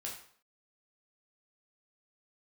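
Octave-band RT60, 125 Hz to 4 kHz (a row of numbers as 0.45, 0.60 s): 0.50, 0.55, 0.55, 0.55, 0.50, 0.50 s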